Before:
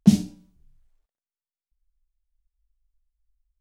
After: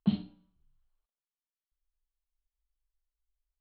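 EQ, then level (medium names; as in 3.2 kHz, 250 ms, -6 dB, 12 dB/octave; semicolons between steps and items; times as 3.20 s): rippled Chebyshev low-pass 4.3 kHz, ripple 9 dB; -3.5 dB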